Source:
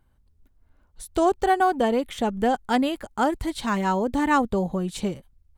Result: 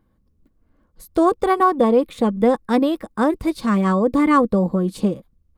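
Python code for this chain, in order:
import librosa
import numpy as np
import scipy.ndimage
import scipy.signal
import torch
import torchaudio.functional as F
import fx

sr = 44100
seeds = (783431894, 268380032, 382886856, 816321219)

y = fx.formant_shift(x, sr, semitones=2)
y = fx.small_body(y, sr, hz=(210.0, 310.0, 480.0, 1100.0), ring_ms=35, db=12)
y = y * librosa.db_to_amplitude(-3.0)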